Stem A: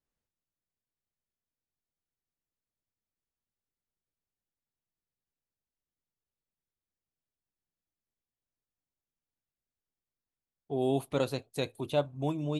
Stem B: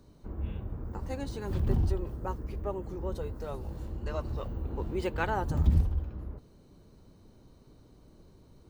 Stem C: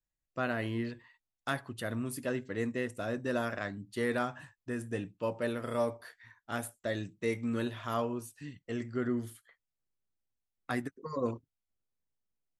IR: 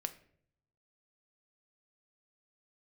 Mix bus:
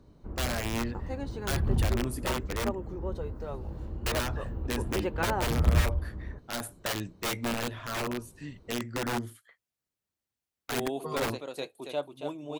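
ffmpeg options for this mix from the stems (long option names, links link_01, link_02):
-filter_complex "[0:a]highpass=280,volume=-3.5dB,asplit=2[link_01][link_02];[link_02]volume=-6.5dB[link_03];[1:a]highshelf=frequency=5500:gain=-12,volume=0.5dB[link_04];[2:a]highpass=54,aeval=exprs='(mod(25.1*val(0)+1,2)-1)/25.1':channel_layout=same,adynamicequalizer=threshold=0.00316:dfrequency=2300:dqfactor=0.7:tfrequency=2300:tqfactor=0.7:attack=5:release=100:ratio=0.375:range=3:mode=cutabove:tftype=highshelf,volume=3dB,asplit=3[link_05][link_06][link_07];[link_05]atrim=end=2.75,asetpts=PTS-STARTPTS,afade=type=out:start_time=2.746:duration=0.004:curve=hsin[link_08];[link_06]atrim=start=2.75:end=4.06,asetpts=PTS-STARTPTS,volume=0[link_09];[link_07]atrim=start=4.06,asetpts=PTS-STARTPTS,afade=type=in:duration=0.004:curve=hsin[link_10];[link_08][link_09][link_10]concat=n=3:v=0:a=1[link_11];[link_03]aecho=0:1:277:1[link_12];[link_01][link_04][link_11][link_12]amix=inputs=4:normalize=0"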